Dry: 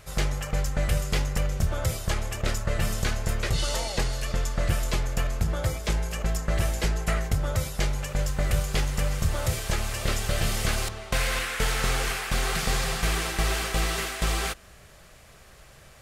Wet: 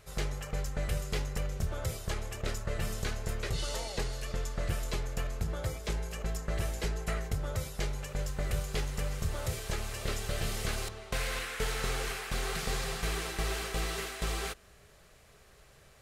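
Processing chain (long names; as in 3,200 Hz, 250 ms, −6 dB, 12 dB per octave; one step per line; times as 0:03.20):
hollow resonant body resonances 420/4,000 Hz, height 7 dB
level −8 dB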